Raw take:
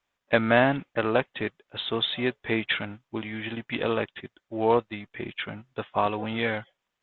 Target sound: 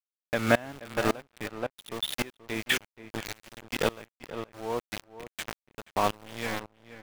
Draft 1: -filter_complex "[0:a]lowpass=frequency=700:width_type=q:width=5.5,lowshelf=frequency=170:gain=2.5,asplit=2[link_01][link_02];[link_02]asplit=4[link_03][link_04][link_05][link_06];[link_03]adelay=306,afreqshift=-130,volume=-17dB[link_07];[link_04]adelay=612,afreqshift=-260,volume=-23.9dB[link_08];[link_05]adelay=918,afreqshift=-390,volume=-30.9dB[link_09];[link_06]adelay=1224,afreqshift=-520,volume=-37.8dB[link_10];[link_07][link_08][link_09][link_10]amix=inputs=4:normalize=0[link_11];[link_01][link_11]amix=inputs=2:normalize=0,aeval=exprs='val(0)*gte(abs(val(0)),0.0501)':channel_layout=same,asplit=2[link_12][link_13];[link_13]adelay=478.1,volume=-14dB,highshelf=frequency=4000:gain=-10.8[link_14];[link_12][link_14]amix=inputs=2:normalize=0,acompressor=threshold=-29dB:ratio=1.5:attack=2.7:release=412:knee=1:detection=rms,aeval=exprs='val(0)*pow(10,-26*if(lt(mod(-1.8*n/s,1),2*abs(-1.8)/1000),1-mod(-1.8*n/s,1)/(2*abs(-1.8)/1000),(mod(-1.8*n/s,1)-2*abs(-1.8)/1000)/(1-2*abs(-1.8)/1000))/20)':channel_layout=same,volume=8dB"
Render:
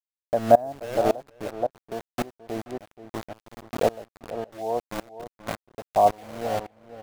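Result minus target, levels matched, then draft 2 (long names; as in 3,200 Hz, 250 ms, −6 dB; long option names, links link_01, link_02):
500 Hz band +2.5 dB
-filter_complex "[0:a]lowshelf=frequency=170:gain=2.5,asplit=2[link_01][link_02];[link_02]asplit=4[link_03][link_04][link_05][link_06];[link_03]adelay=306,afreqshift=-130,volume=-17dB[link_07];[link_04]adelay=612,afreqshift=-260,volume=-23.9dB[link_08];[link_05]adelay=918,afreqshift=-390,volume=-30.9dB[link_09];[link_06]adelay=1224,afreqshift=-520,volume=-37.8dB[link_10];[link_07][link_08][link_09][link_10]amix=inputs=4:normalize=0[link_11];[link_01][link_11]amix=inputs=2:normalize=0,aeval=exprs='val(0)*gte(abs(val(0)),0.0501)':channel_layout=same,asplit=2[link_12][link_13];[link_13]adelay=478.1,volume=-14dB,highshelf=frequency=4000:gain=-10.8[link_14];[link_12][link_14]amix=inputs=2:normalize=0,acompressor=threshold=-29dB:ratio=1.5:attack=2.7:release=412:knee=1:detection=rms,aeval=exprs='val(0)*pow(10,-26*if(lt(mod(-1.8*n/s,1),2*abs(-1.8)/1000),1-mod(-1.8*n/s,1)/(2*abs(-1.8)/1000),(mod(-1.8*n/s,1)-2*abs(-1.8)/1000)/(1-2*abs(-1.8)/1000))/20)':channel_layout=same,volume=8dB"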